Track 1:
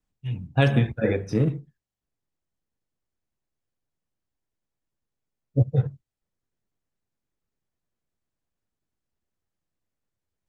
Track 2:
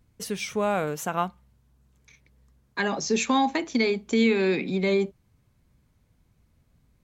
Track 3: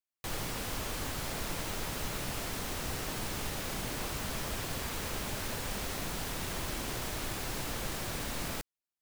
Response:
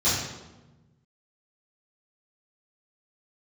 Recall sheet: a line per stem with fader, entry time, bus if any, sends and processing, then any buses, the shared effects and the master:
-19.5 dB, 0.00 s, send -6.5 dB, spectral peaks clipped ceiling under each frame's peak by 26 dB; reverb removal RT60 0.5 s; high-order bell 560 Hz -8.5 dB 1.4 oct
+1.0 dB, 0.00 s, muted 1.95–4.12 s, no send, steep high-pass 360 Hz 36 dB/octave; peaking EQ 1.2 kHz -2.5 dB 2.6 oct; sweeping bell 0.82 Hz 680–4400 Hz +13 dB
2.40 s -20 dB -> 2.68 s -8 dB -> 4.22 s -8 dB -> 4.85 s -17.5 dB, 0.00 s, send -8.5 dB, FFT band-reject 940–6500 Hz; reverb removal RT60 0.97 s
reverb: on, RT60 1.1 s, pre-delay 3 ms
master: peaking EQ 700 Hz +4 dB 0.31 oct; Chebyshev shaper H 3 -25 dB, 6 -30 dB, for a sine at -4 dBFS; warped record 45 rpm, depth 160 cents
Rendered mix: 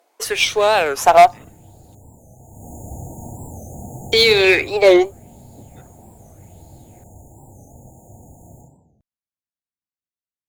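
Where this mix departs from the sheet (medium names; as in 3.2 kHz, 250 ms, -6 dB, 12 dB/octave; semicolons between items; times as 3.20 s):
stem 1: send off; stem 2 +1.0 dB -> +12.0 dB; stem 3 -20.0 dB -> -13.0 dB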